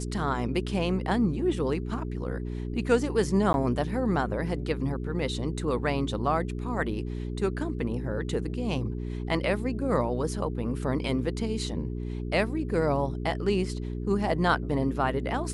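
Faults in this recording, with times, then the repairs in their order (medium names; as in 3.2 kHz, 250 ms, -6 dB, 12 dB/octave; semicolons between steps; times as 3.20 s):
hum 60 Hz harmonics 7 -33 dBFS
3.53–3.54 s: dropout 11 ms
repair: de-hum 60 Hz, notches 7; interpolate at 3.53 s, 11 ms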